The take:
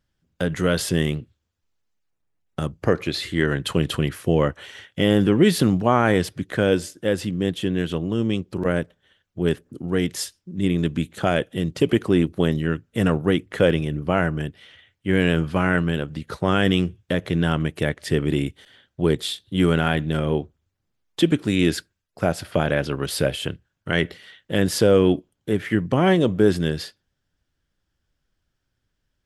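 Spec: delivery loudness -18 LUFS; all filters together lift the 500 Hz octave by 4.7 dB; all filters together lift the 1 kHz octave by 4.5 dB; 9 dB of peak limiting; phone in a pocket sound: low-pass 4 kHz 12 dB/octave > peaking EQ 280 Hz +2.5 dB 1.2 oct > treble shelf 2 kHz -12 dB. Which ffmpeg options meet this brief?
-af "equalizer=f=500:t=o:g=3.5,equalizer=f=1000:t=o:g=8,alimiter=limit=0.422:level=0:latency=1,lowpass=4000,equalizer=f=280:t=o:w=1.2:g=2.5,highshelf=f=2000:g=-12,volume=1.58"

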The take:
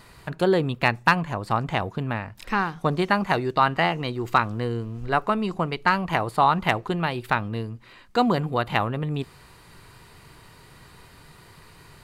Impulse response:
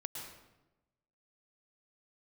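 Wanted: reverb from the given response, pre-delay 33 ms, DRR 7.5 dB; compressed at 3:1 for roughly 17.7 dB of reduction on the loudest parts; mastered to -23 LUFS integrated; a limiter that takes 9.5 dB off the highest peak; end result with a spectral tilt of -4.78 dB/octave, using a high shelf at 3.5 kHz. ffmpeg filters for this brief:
-filter_complex "[0:a]highshelf=f=3500:g=5.5,acompressor=threshold=0.0126:ratio=3,alimiter=level_in=1.41:limit=0.0631:level=0:latency=1,volume=0.708,asplit=2[s0][s1];[1:a]atrim=start_sample=2205,adelay=33[s2];[s1][s2]afir=irnorm=-1:irlink=0,volume=0.473[s3];[s0][s3]amix=inputs=2:normalize=0,volume=7.08"

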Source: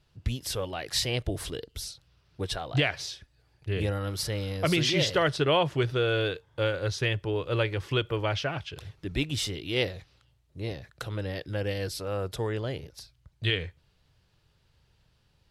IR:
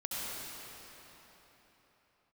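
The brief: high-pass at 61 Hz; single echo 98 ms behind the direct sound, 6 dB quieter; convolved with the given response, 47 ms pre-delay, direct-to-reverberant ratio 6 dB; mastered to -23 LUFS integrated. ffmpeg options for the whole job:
-filter_complex "[0:a]highpass=61,aecho=1:1:98:0.501,asplit=2[s0][s1];[1:a]atrim=start_sample=2205,adelay=47[s2];[s1][s2]afir=irnorm=-1:irlink=0,volume=0.299[s3];[s0][s3]amix=inputs=2:normalize=0,volume=1.78"

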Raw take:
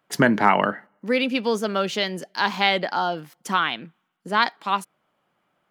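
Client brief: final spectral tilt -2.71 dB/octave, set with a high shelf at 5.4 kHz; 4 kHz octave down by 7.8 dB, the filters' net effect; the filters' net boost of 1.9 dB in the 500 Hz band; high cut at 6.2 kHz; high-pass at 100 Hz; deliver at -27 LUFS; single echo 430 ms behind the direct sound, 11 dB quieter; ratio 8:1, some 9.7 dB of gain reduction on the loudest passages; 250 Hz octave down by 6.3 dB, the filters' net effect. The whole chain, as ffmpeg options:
-af "highpass=100,lowpass=6200,equalizer=f=250:t=o:g=-8.5,equalizer=f=500:t=o:g=4.5,equalizer=f=4000:t=o:g=-8,highshelf=f=5400:g=-7.5,acompressor=threshold=0.0794:ratio=8,aecho=1:1:430:0.282,volume=1.26"

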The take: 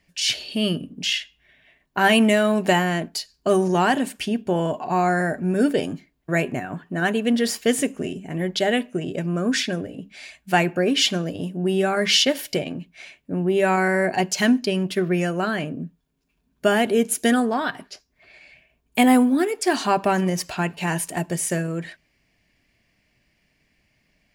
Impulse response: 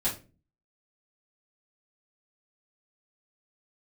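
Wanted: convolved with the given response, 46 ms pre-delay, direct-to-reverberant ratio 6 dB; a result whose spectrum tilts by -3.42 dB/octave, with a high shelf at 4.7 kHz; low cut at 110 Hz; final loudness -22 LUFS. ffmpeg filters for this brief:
-filter_complex "[0:a]highpass=110,highshelf=f=4700:g=8,asplit=2[s0][s1];[1:a]atrim=start_sample=2205,adelay=46[s2];[s1][s2]afir=irnorm=-1:irlink=0,volume=0.211[s3];[s0][s3]amix=inputs=2:normalize=0,volume=0.75"

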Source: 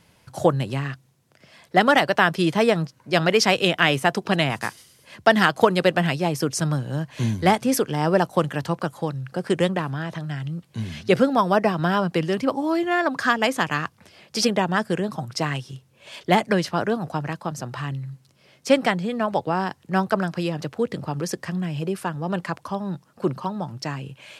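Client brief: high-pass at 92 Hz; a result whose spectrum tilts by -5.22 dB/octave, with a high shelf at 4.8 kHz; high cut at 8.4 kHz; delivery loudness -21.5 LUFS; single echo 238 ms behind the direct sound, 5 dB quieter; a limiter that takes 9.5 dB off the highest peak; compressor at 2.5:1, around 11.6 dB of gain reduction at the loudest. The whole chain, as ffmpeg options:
-af "highpass=92,lowpass=8400,highshelf=f=4800:g=3.5,acompressor=threshold=0.0355:ratio=2.5,alimiter=limit=0.0891:level=0:latency=1,aecho=1:1:238:0.562,volume=3.35"

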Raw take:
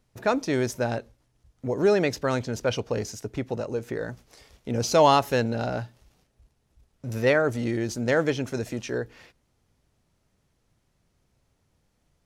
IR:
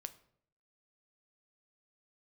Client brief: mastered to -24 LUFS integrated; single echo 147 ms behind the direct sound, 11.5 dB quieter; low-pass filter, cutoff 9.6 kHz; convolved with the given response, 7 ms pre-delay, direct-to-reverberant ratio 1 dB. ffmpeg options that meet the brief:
-filter_complex "[0:a]lowpass=9600,aecho=1:1:147:0.266,asplit=2[s0][s1];[1:a]atrim=start_sample=2205,adelay=7[s2];[s1][s2]afir=irnorm=-1:irlink=0,volume=1.41[s3];[s0][s3]amix=inputs=2:normalize=0,volume=0.891"

